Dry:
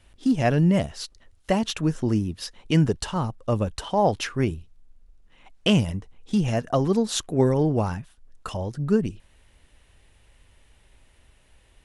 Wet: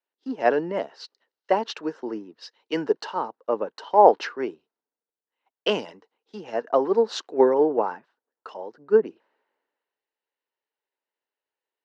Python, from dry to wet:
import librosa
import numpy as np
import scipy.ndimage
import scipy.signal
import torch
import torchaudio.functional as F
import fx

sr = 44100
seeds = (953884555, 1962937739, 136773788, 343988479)

y = fx.cabinet(x, sr, low_hz=310.0, low_slope=24, high_hz=4300.0, hz=(450.0, 910.0, 1500.0, 2400.0, 3400.0), db=(6, 7, 3, -6, -9))
y = fx.band_widen(y, sr, depth_pct=70)
y = F.gain(torch.from_numpy(y), -1.0).numpy()